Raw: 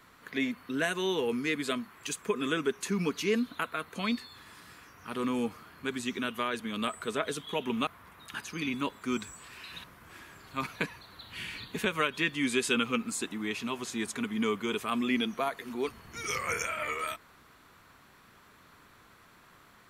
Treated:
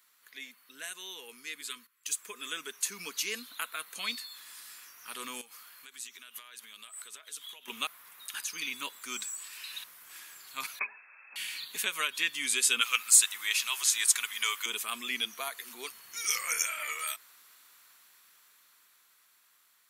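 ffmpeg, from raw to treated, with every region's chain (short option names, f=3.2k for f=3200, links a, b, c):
-filter_complex "[0:a]asettb=1/sr,asplit=3[a][b][c];[a]atrim=end=1.614[d];[b]atrim=start=1.61:end=2.14,asetpts=PTS-STARTPTS,afade=t=in:d=0.004:c=qsin,afade=t=out:st=0.526:d=0.004:c=qsin,asuperstop=centerf=690:order=20:qfactor=1.5,agate=range=-15dB:threshold=-46dB:ratio=16:release=100:detection=peak[e];[c]atrim=start=2.136[f];[d][e]acrossfade=d=0.004:c1=hsin:c2=qsin[g];[g][f]acrossfade=d=0.004:c1=qsin:c2=hsin,asettb=1/sr,asplit=3[h][i][j];[h]atrim=end=5.414[k];[i]atrim=start=5.41:end=7.68,asetpts=PTS-STARTPTS,afade=t=in:d=0.004:c=qsin,afade=t=out:st=2.266:d=0.004:c=qsin,lowshelf=f=440:g=-8.5,acompressor=threshold=-44dB:ratio=10:attack=3.2:release=140:knee=1:detection=peak[l];[j]atrim=start=7.676[m];[k][l]acrossfade=d=0.004:c1=hsin:c2=qsin[n];[n][m]acrossfade=d=0.004:c1=qsin:c2=hsin,asettb=1/sr,asplit=3[o][p][q];[o]atrim=end=10.794[r];[p]atrim=start=10.79:end=11.36,asetpts=PTS-STARTPTS,afade=t=in:d=0.004:c=qsin,afade=t=out:st=0.566:d=0.004:c=qsin,lowpass=f=2.3k:t=q:w=0.5098,lowpass=f=2.3k:t=q:w=0.6013,lowpass=f=2.3k:t=q:w=0.9,lowpass=f=2.3k:t=q:w=2.563,afreqshift=-2700,bandreject=f=60:t=h:w=6,bandreject=f=120:t=h:w=6,bandreject=f=180:t=h:w=6,bandreject=f=240:t=h:w=6,bandreject=f=300:t=h:w=6,bandreject=f=360:t=h:w=6,bandreject=f=420:t=h:w=6,bandreject=f=480:t=h:w=6[s];[q]atrim=start=11.356[t];[r][s]acrossfade=d=0.004:c1=hsin:c2=qsin[u];[u][t]acrossfade=d=0.004:c1=qsin:c2=hsin,asettb=1/sr,asplit=3[v][w][x];[v]atrim=end=12.814[y];[w]atrim=start=12.81:end=14.66,asetpts=PTS-STARTPTS,afade=t=in:d=0.004:c=qsin,afade=t=out:st=1.846:d=0.004:c=qsin,highpass=1k,acontrast=71[z];[x]atrim=start=14.656[aa];[y][z]acrossfade=d=0.004:c1=hsin:c2=qsin[ab];[ab][aa]acrossfade=d=0.004:c1=qsin:c2=hsin,aderivative,dynaudnorm=f=390:g=13:m=10dB"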